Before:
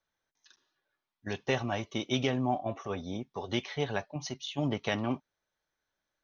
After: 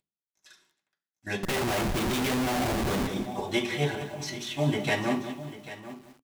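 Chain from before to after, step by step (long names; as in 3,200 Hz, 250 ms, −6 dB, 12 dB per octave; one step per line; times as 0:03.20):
variable-slope delta modulation 64 kbit/s
mains-hum notches 60/120/180/240/300 Hz
0:03.95–0:04.51: compressor whose output falls as the input rises −43 dBFS, ratio −1
single-tap delay 793 ms −14.5 dB
convolution reverb RT60 0.45 s, pre-delay 3 ms, DRR −4 dB
0:01.43–0:03.07: comparator with hysteresis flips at −35 dBFS
feedback echo at a low word length 187 ms, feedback 35%, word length 8 bits, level −10 dB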